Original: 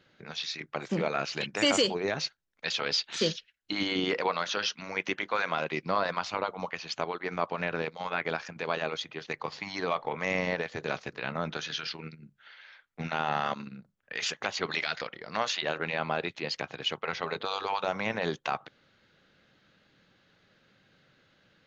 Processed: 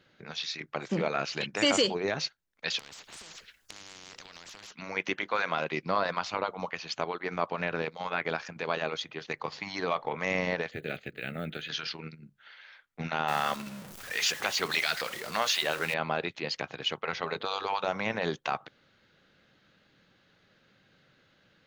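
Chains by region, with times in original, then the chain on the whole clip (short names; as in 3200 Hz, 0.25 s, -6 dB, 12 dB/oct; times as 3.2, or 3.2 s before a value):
2.79–4.72 compressor, threshold -35 dBFS + spectral compressor 10:1
10.71–11.69 block floating point 7-bit + fixed phaser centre 2400 Hz, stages 4
13.28–15.94 zero-crossing step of -38 dBFS + tilt +1.5 dB/oct
whole clip: dry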